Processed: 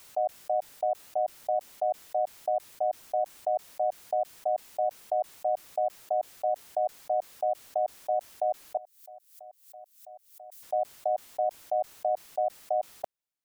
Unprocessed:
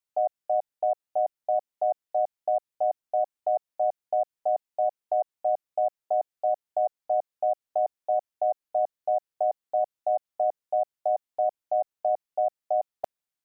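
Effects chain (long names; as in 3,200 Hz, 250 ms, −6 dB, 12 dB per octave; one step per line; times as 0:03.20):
0:08.77–0:10.63: first difference
background raised ahead of every attack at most 110 dB per second
level −3 dB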